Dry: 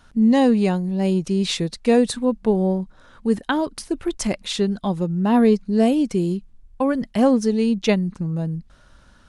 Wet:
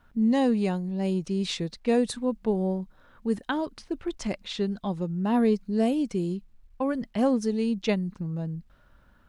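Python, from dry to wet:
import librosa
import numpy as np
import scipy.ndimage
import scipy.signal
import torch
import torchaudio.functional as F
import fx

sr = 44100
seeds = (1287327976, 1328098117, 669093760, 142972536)

y = fx.env_lowpass(x, sr, base_hz=2300.0, full_db=-15.0)
y = fx.quant_dither(y, sr, seeds[0], bits=12, dither='none')
y = F.gain(torch.from_numpy(y), -7.0).numpy()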